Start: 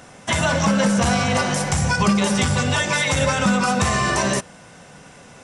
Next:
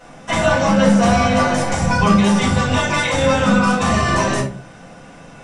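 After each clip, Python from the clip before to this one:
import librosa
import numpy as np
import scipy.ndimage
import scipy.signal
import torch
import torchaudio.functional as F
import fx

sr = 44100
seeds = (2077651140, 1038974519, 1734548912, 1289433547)

y = fx.high_shelf(x, sr, hz=6000.0, db=-7.5)
y = fx.room_shoebox(y, sr, seeds[0], volume_m3=210.0, walls='furnished', distance_m=5.0)
y = y * 10.0 ** (-6.5 / 20.0)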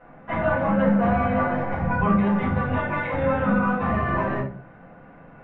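y = scipy.signal.sosfilt(scipy.signal.butter(4, 2000.0, 'lowpass', fs=sr, output='sos'), x)
y = y * 10.0 ** (-6.5 / 20.0)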